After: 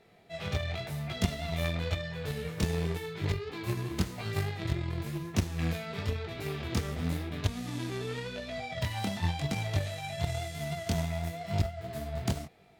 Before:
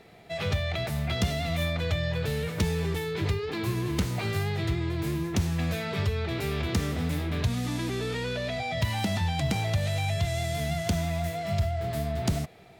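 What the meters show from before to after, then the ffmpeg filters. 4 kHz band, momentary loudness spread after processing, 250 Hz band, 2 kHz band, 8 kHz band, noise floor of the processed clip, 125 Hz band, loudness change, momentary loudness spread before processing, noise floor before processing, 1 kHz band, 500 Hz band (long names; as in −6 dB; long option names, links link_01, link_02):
−5.0 dB, 5 LU, −4.5 dB, −5.0 dB, −4.5 dB, −46 dBFS, −4.5 dB, −5.0 dB, 3 LU, −36 dBFS, −5.0 dB, −5.5 dB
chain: -af "flanger=delay=19.5:depth=6.2:speed=0.94,aeval=exprs='0.141*(cos(1*acos(clip(val(0)/0.141,-1,1)))-cos(1*PI/2))+0.0316*(cos(3*acos(clip(val(0)/0.141,-1,1)))-cos(3*PI/2))':channel_layout=same,volume=4.5dB"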